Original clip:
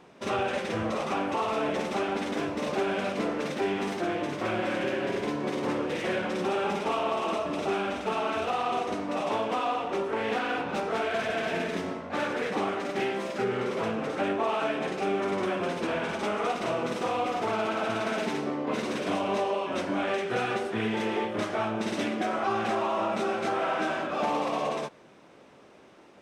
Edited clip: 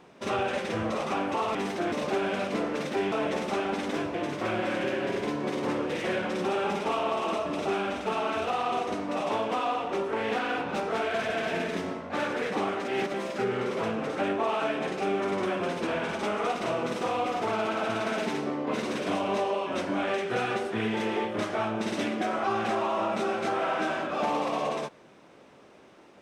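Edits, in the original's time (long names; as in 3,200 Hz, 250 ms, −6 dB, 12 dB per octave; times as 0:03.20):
0:01.55–0:02.57: swap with 0:03.77–0:04.14
0:12.88–0:13.14: reverse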